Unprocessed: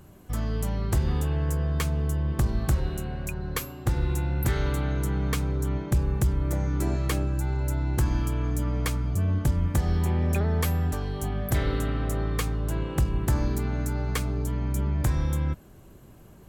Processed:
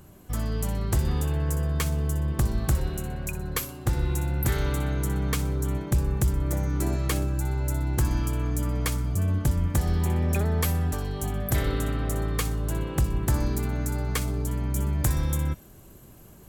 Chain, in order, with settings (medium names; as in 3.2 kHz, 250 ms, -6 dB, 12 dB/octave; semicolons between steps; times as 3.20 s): treble shelf 5.5 kHz +4.5 dB, from 14.76 s +10 dB; feedback echo behind a high-pass 62 ms, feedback 33%, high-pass 3.9 kHz, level -10 dB